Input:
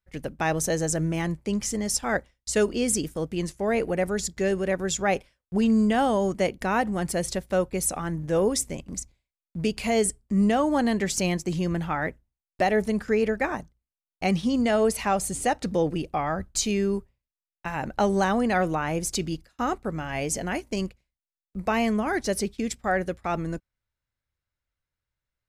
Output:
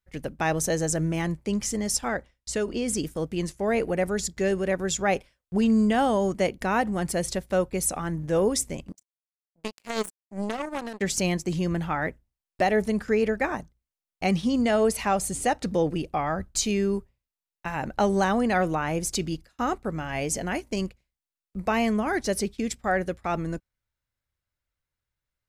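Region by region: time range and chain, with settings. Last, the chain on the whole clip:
0:02.08–0:02.98: high-shelf EQ 7,200 Hz −7 dB + downward compressor 4 to 1, threshold −23 dBFS
0:08.92–0:11.01: high-pass filter 220 Hz + low-shelf EQ 330 Hz +5.5 dB + power curve on the samples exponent 3
whole clip: no processing

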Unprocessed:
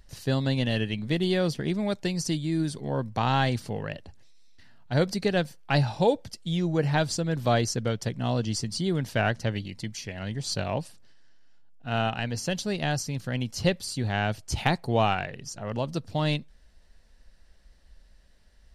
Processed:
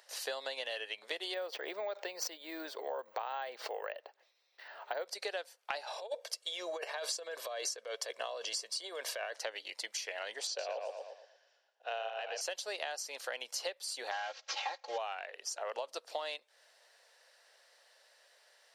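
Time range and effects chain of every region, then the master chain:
0:01.34–0:05.06: head-to-tape spacing loss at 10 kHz 25 dB + bad sample-rate conversion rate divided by 2×, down filtered, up hold + background raised ahead of every attack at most 59 dB per second
0:05.87–0:09.33: comb filter 1.8 ms, depth 51% + compressor whose output falls as the input rises −28 dBFS, ratio −0.5
0:10.47–0:12.41: loudspeaker in its box 370–6,200 Hz, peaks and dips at 510 Hz +5 dB, 890 Hz −6 dB, 1,300 Hz −9 dB, 2,000 Hz −6 dB, 3,000 Hz −3 dB, 4,300 Hz −6 dB + feedback echo with a low-pass in the loop 115 ms, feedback 35%, low-pass 4,500 Hz, level −3.5 dB
0:14.11–0:14.98: variable-slope delta modulation 32 kbit/s + low-shelf EQ 350 Hz −7.5 dB + comb filter 3.7 ms, depth 99%
whole clip: Butterworth high-pass 490 Hz 36 dB per octave; downward compressor 12 to 1, threshold −40 dBFS; level +4.5 dB

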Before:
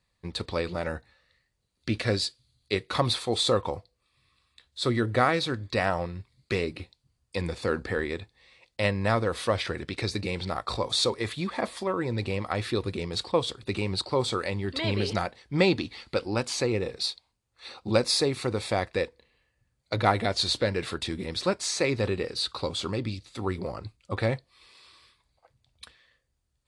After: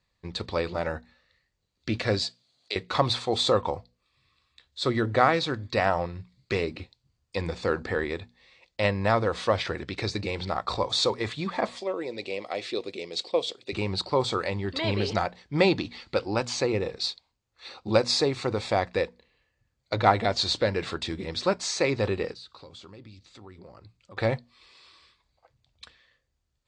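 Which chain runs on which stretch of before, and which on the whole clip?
0:02.22–0:02.76: high-pass filter 300 Hz + parametric band 670 Hz +8.5 dB 0.45 octaves + multiband upward and downward compressor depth 70%
0:11.76–0:13.73: high-pass filter 380 Hz + flat-topped bell 1,200 Hz −10.5 dB 1.3 octaves
0:22.32–0:24.17: high-pass filter 43 Hz + downward compressor 2.5 to 1, threshold −51 dBFS
whole clip: Butterworth low-pass 7,700 Hz 36 dB per octave; mains-hum notches 60/120/180/240 Hz; dynamic equaliser 820 Hz, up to +4 dB, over −41 dBFS, Q 1.2

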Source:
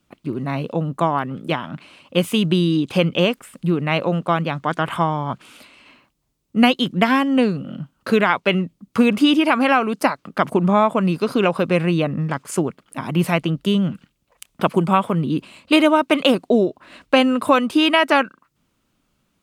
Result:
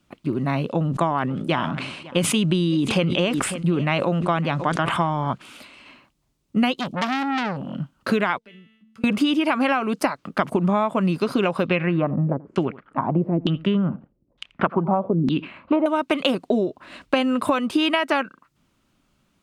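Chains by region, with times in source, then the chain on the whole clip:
0:00.70–0:05.32: low-pass filter 11,000 Hz 24 dB per octave + single-tap delay 551 ms −22 dB + level that may fall only so fast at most 51 dB per second
0:06.78–0:07.75: upward compression, threshold −37 dBFS + Butterworth band-reject 1,700 Hz, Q 1.5 + saturating transformer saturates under 3,900 Hz
0:08.38–0:09.04: tuned comb filter 220 Hz, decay 0.53 s, mix 90% + downward compressor 2 to 1, threshold −54 dBFS + parametric band 860 Hz −8.5 dB 1 octave
0:11.65–0:15.86: single-tap delay 84 ms −21 dB + auto-filter low-pass saw down 1.1 Hz 250–3,800 Hz
whole clip: high-shelf EQ 11,000 Hz −7 dB; notch filter 470 Hz, Q 12; downward compressor, threshold −19 dBFS; level +2 dB

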